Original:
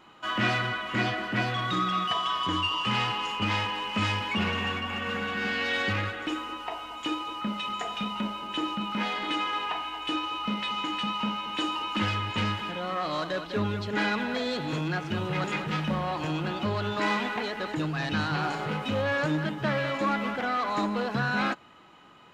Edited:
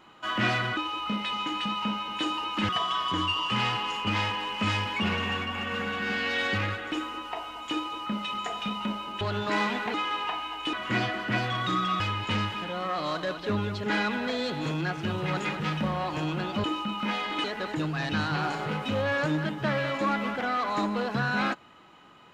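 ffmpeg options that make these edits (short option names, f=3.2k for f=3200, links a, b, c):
-filter_complex "[0:a]asplit=9[a][b][c][d][e][f][g][h][i];[a]atrim=end=0.772[j];[b]atrim=start=10.148:end=12.072[k];[c]atrim=start=2.038:end=8.562[l];[d]atrim=start=16.708:end=17.442[m];[e]atrim=start=9.358:end=10.152[n];[f]atrim=start=0.768:end=2.042[o];[g]atrim=start=12.068:end=16.712[p];[h]atrim=start=8.558:end=9.362[q];[i]atrim=start=17.438[r];[j][k]acrossfade=d=0.004:c1=hsin:c2=hsin[s];[s][l]acrossfade=d=0.004:c1=hsin:c2=hsin[t];[t][m]acrossfade=d=0.004:c1=hsin:c2=hsin[u];[u][n]acrossfade=d=0.004:c1=hsin:c2=hsin[v];[v][o]acrossfade=d=0.004:c1=hsin:c2=hsin[w];[w][p]acrossfade=d=0.004:c1=hsin:c2=hsin[x];[x][q]acrossfade=d=0.004:c1=hsin:c2=hsin[y];[y][r]acrossfade=d=0.004:c1=hsin:c2=hsin"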